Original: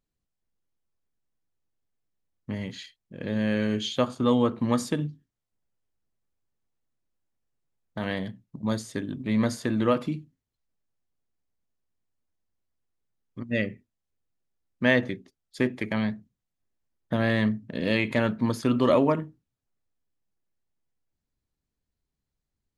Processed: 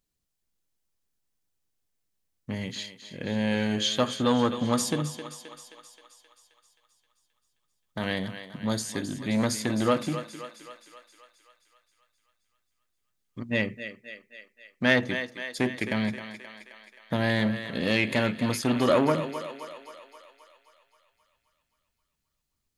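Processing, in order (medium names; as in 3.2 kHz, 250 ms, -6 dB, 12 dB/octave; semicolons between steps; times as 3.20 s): treble shelf 2.8 kHz +9 dB; on a send: thinning echo 264 ms, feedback 63%, high-pass 410 Hz, level -10.5 dB; on the sum: transformer saturation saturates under 850 Hz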